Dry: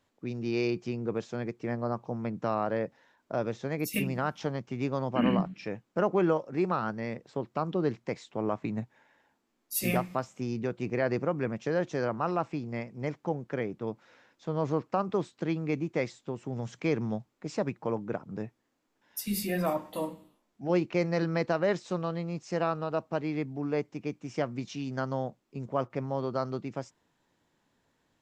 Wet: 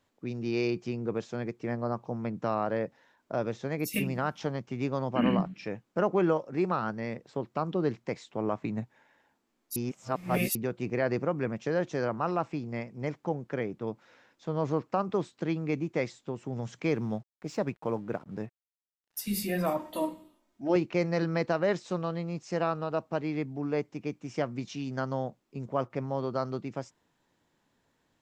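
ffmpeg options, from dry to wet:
ffmpeg -i in.wav -filter_complex "[0:a]asettb=1/sr,asplit=3[link_01][link_02][link_03];[link_01]atrim=end=16.874[link_04];[link_02]atrim=start=16.87:end=19.23,asetpts=PTS-STARTPTS,afade=type=in:duration=0.004:curve=qsin,afade=type=out:start_time=2.356:duration=0.004:curve=qsin,aeval=exprs='sgn(val(0))*max(abs(val(0))-0.00106,0)':channel_layout=same[link_05];[link_03]atrim=start=19.226[link_06];[link_04][link_05]acrossfade=duration=0.004:curve1=hsin:curve2=qsin[link_07];[link_07][link_06]acrossfade=duration=0.004:curve1=qsin:curve2=hsin,asettb=1/sr,asplit=3[link_08][link_09][link_10];[link_08]atrim=end=19.794[link_11];[link_09]atrim=start=19.79:end=20.76,asetpts=PTS-STARTPTS,afade=type=in:duration=0.004:curve=qsin,afade=type=out:start_time=0.966:duration=0.004:curve=qsin,aecho=1:1:3.2:0.65,atrim=end_sample=42777[link_12];[link_10]atrim=start=20.756[link_13];[link_11][link_12]acrossfade=duration=0.004:curve1=hsin:curve2=qsin[link_14];[link_14][link_13]acrossfade=duration=0.004:curve1=qsin:curve2=hsin,asplit=3[link_15][link_16][link_17];[link_15]atrim=end=9.762[link_18];[link_16]atrim=start=9.758:end=10.552,asetpts=PTS-STARTPTS,areverse[link_19];[link_17]atrim=start=10.548[link_20];[link_18][link_19]acrossfade=duration=0.004:curve1=hsin:curve2=hsin[link_21];[link_21][link_20]acrossfade=duration=0.004:curve1=hsin:curve2=hsin" out.wav

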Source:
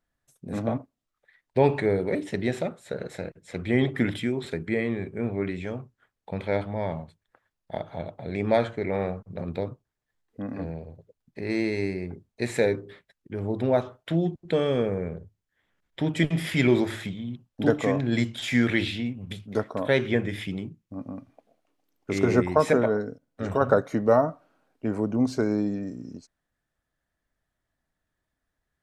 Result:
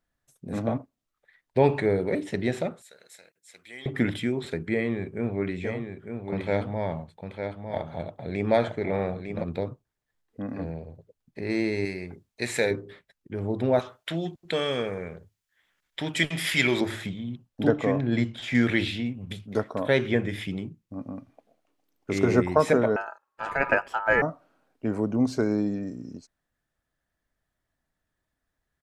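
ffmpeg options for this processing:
ffmpeg -i in.wav -filter_complex "[0:a]asettb=1/sr,asplit=3[link_01][link_02][link_03];[link_01]atrim=end=2.824[link_04];[link_02]atrim=start=2.82:end=3.86,asetpts=PTS-STARTPTS,afade=type=in:duration=0.004:curve=qsin,afade=type=out:start_time=1.036:duration=0.004:curve=qsin,aderivative[link_05];[link_03]atrim=start=3.856[link_06];[link_04][link_05]acrossfade=duration=0.004:curve1=hsin:curve2=qsin[link_07];[link_07][link_06]acrossfade=duration=0.004:curve1=qsin:curve2=hsin,asplit=3[link_08][link_09][link_10];[link_08]afade=type=out:start_time=5.63:duration=0.02[link_11];[link_09]aecho=1:1:903:0.473,afade=type=in:start_time=5.63:duration=0.02,afade=type=out:start_time=9.42:duration=0.02[link_12];[link_10]afade=type=in:start_time=9.42:duration=0.02[link_13];[link_11][link_12][link_13]amix=inputs=3:normalize=0,asettb=1/sr,asplit=3[link_14][link_15][link_16];[link_14]atrim=end=11.854[link_17];[link_15]atrim=start=11.85:end=12.71,asetpts=PTS-STARTPTS,afade=type=in:duration=0.004:curve=qsin,afade=type=out:start_time=0.856:duration=0.004:curve=qsin,tiltshelf=frequency=940:gain=-5[link_18];[link_16]atrim=start=12.706[link_19];[link_17][link_18]acrossfade=duration=0.004:curve1=hsin:curve2=qsin[link_20];[link_20][link_19]acrossfade=duration=0.004:curve1=qsin:curve2=hsin,asettb=1/sr,asplit=3[link_21][link_22][link_23];[link_21]atrim=end=13.794[link_24];[link_22]atrim=start=13.79:end=16.81,asetpts=PTS-STARTPTS,afade=type=in:duration=0.004:curve=qsin,afade=type=out:start_time=3.016:duration=0.004:curve=qsin,tiltshelf=frequency=870:gain=-7.5[link_25];[link_23]atrim=start=16.806[link_26];[link_24][link_25]acrossfade=duration=0.004:curve1=hsin:curve2=qsin[link_27];[link_27][link_26]acrossfade=duration=0.004:curve1=qsin:curve2=hsin,asettb=1/sr,asplit=3[link_28][link_29][link_30];[link_28]atrim=end=17.674[link_31];[link_29]atrim=start=17.67:end=18.55,asetpts=PTS-STARTPTS,afade=type=in:duration=0.004:curve=qsin,afade=type=out:start_time=0.876:duration=0.004:curve=qsin,lowpass=frequency=2500:poles=1[link_32];[link_30]atrim=start=18.546[link_33];[link_31][link_32]acrossfade=duration=0.004:curve1=hsin:curve2=qsin[link_34];[link_34][link_33]acrossfade=duration=0.004:curve1=qsin:curve2=hsin,asettb=1/sr,asplit=3[link_35][link_36][link_37];[link_35]atrim=end=22.964[link_38];[link_36]atrim=start=22.96:end=24.22,asetpts=PTS-STARTPTS,afade=type=in:duration=0.004:curve=qsin,afade=type=out:start_time=1.256:duration=0.004:curve=qsin,aeval=exprs='val(0)*sin(2*PI*1100*n/s)':channel_layout=same[link_39];[link_37]atrim=start=24.216[link_40];[link_38][link_39]acrossfade=duration=0.004:curve1=hsin:curve2=qsin[link_41];[link_41][link_40]acrossfade=duration=0.004:curve1=qsin:curve2=hsin" out.wav

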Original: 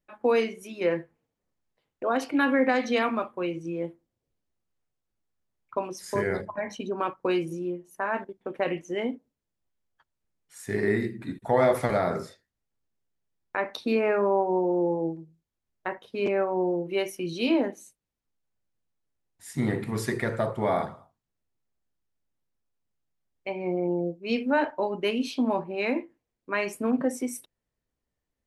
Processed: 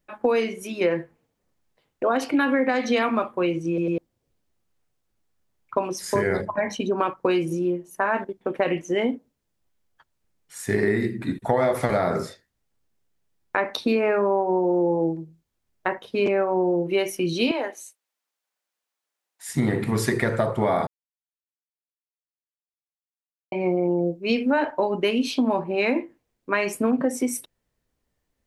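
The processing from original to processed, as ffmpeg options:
ffmpeg -i in.wav -filter_complex "[0:a]asettb=1/sr,asplit=3[link_01][link_02][link_03];[link_01]atrim=end=17.514[link_04];[link_02]atrim=start=17.51:end=19.49,asetpts=PTS-STARTPTS,afade=type=in:duration=0.004:curve=qsin,afade=type=out:start_time=1.976:duration=0.004:curve=qsin,highpass=730[link_05];[link_03]atrim=start=19.486[link_06];[link_04][link_05]acrossfade=duration=0.004:curve1=hsin:curve2=qsin[link_07];[link_07][link_06]acrossfade=duration=0.004:curve1=qsin:curve2=hsin,asplit=6[link_08][link_09][link_10][link_11][link_12][link_13];[link_08]atrim=end=3.782[link_14];[link_09]atrim=start=3.678:end=3.782[link_15];[link_10]atrim=start=3.678:end=3.782[link_16];[link_11]atrim=start=3.978:end=20.87,asetpts=PTS-STARTPTS,afade=type=out:start_time=16.888:duration=0.004:curve=hsin[link_17];[link_12]atrim=start=20.87:end=23.52,asetpts=PTS-STARTPTS,volume=0[link_18];[link_13]atrim=start=23.52,asetpts=PTS-STARTPTS,afade=type=in:duration=0.004:curve=hsin[link_19];[link_14][link_15]acrossfade=duration=0.004:curve1=hsin:curve2=hsin[link_20];[link_20][link_16]acrossfade=duration=0.004:curve1=hsin:curve2=hsin[link_21];[link_17][link_18][link_19]concat=n=3:v=0:a=1[link_22];[link_21][link_22]acrossfade=duration=0.004:curve1=hsin:curve2=hsin,acompressor=threshold=-26dB:ratio=5,volume=8dB" out.wav

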